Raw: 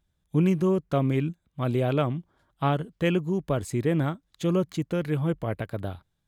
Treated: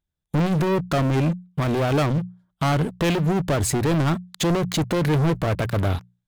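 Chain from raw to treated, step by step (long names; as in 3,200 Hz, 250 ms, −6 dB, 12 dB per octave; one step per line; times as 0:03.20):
leveller curve on the samples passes 5
mains-hum notches 60/120/180 Hz
brickwall limiter −16.5 dBFS, peak gain reduction 8.5 dB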